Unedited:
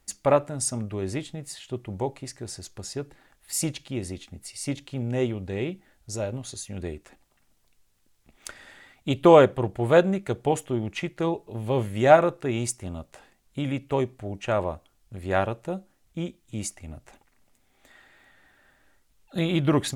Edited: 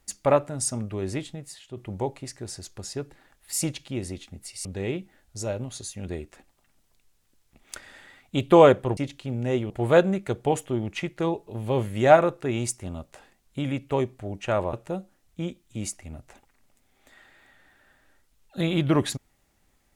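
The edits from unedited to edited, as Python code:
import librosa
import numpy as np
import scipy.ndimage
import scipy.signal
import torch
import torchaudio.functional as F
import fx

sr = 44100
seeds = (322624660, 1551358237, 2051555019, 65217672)

y = fx.edit(x, sr, fx.fade_out_to(start_s=1.29, length_s=0.48, curve='qua', floor_db=-6.5),
    fx.move(start_s=4.65, length_s=0.73, to_s=9.7),
    fx.cut(start_s=14.73, length_s=0.78), tone=tone)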